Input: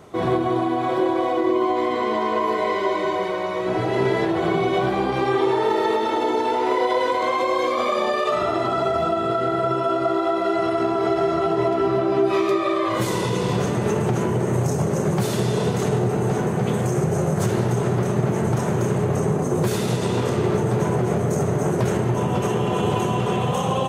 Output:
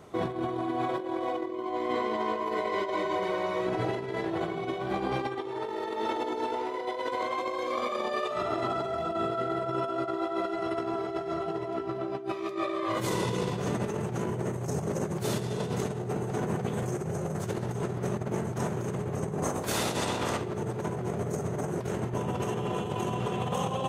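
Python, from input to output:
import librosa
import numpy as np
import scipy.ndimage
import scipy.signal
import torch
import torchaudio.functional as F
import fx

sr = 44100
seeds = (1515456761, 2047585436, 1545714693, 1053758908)

y = fx.spec_clip(x, sr, under_db=14, at=(19.42, 20.4), fade=0.02)
y = fx.over_compress(y, sr, threshold_db=-23.0, ratio=-0.5)
y = F.gain(torch.from_numpy(y), -7.5).numpy()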